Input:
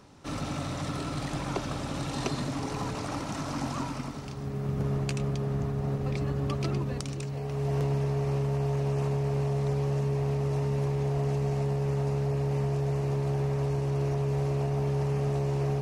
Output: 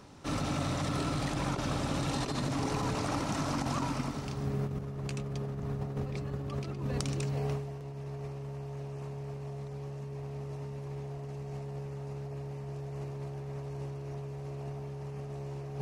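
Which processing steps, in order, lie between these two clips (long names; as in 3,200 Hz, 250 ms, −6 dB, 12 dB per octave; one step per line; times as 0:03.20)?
compressor whose output falls as the input rises −32 dBFS, ratio −0.5
level −2.5 dB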